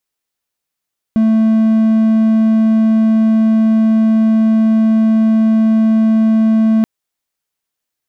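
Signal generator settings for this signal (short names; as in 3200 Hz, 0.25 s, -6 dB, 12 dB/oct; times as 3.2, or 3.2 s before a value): tone triangle 221 Hz -6 dBFS 5.68 s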